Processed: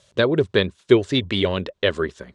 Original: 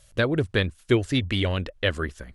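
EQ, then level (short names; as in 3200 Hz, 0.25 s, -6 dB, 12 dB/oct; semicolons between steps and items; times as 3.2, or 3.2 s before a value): speaker cabinet 110–8000 Hz, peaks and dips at 190 Hz +4 dB, 400 Hz +9 dB, 570 Hz +4 dB, 1000 Hz +6 dB, 3700 Hz +6 dB; +1.0 dB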